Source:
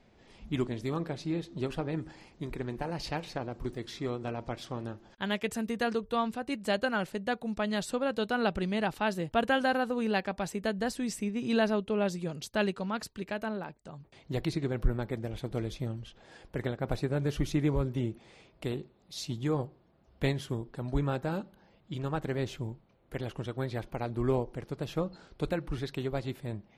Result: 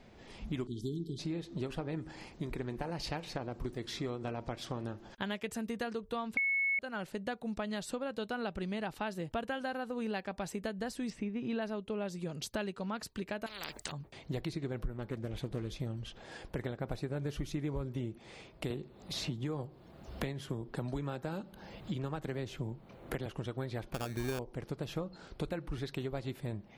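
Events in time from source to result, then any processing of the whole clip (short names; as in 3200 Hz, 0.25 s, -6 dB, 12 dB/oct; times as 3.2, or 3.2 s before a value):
0.67–1.19 spectral delete 440–3000 Hz
6.37–6.79 bleep 2200 Hz -12 dBFS
11.1–11.62 LPF 3000 Hz
13.46–13.92 spectral compressor 10:1
14.96–15.81 Doppler distortion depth 0.24 ms
18.7–23.26 three-band squash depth 70%
23.94–24.39 sample-rate reducer 2000 Hz
whole clip: compressor 4:1, threshold -41 dBFS; gain +5 dB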